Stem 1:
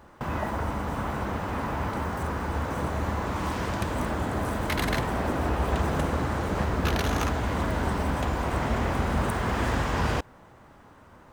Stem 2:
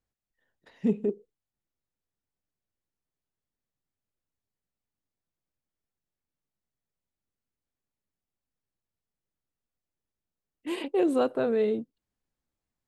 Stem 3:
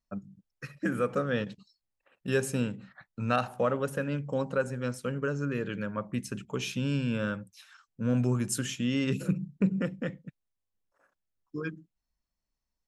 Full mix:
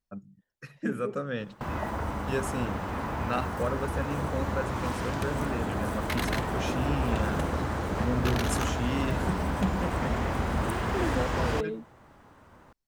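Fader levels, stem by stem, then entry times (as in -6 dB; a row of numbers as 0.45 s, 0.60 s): -2.5 dB, -7.5 dB, -3.5 dB; 1.40 s, 0.00 s, 0.00 s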